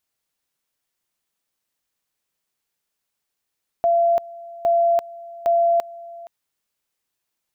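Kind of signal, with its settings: two-level tone 682 Hz -14 dBFS, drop 20.5 dB, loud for 0.34 s, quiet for 0.47 s, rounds 3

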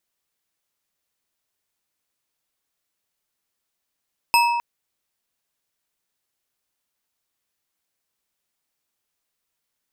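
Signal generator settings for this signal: glass hit bar, length 0.26 s, lowest mode 947 Hz, decay 1.78 s, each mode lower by 3 dB, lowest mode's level -13.5 dB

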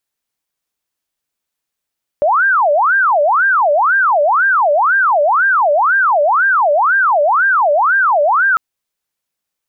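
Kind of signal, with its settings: siren wail 575–1600 Hz 2 per s sine -9 dBFS 6.35 s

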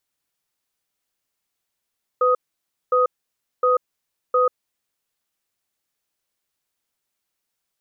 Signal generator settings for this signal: cadence 502 Hz, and 1.25 kHz, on 0.14 s, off 0.57 s, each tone -17 dBFS 2.66 s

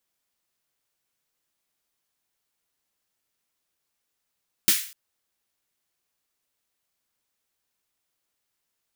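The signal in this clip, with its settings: snare drum length 0.25 s, tones 210 Hz, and 330 Hz, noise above 1.7 kHz, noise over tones 11 dB, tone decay 0.11 s, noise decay 0.44 s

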